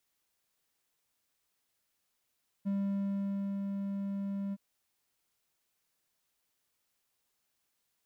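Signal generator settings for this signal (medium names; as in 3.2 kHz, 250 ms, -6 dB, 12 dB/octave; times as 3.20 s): ADSR triangle 198 Hz, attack 24 ms, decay 916 ms, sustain -4 dB, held 1.88 s, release 37 ms -27 dBFS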